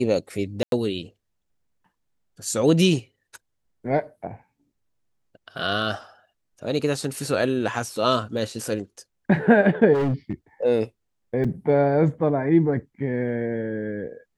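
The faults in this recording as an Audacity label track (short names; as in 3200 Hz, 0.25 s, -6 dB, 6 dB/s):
0.630000	0.720000	gap 92 ms
9.930000	10.330000	clipped -19.5 dBFS
11.440000	11.450000	gap 5.2 ms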